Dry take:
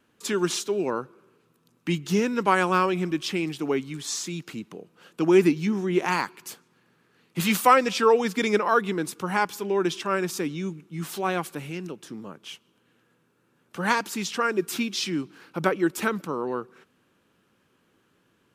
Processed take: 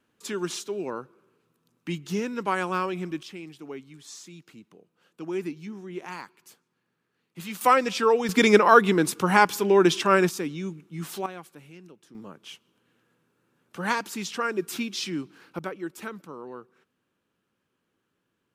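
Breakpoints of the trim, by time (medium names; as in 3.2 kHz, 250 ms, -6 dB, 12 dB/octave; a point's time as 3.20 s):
-5.5 dB
from 3.23 s -13 dB
from 7.61 s -2 dB
from 8.29 s +6 dB
from 10.29 s -2 dB
from 11.26 s -13.5 dB
from 12.15 s -3 dB
from 15.59 s -11 dB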